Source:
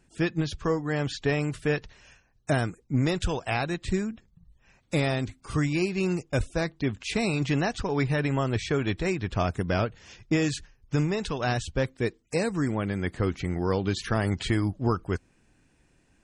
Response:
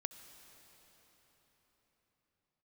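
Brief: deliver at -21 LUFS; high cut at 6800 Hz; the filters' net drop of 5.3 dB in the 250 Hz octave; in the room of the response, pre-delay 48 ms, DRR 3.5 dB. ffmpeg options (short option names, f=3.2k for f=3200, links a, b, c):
-filter_complex "[0:a]lowpass=6.8k,equalizer=f=250:t=o:g=-8,asplit=2[a][b];[1:a]atrim=start_sample=2205,adelay=48[c];[b][c]afir=irnorm=-1:irlink=0,volume=-1.5dB[d];[a][d]amix=inputs=2:normalize=0,volume=8dB"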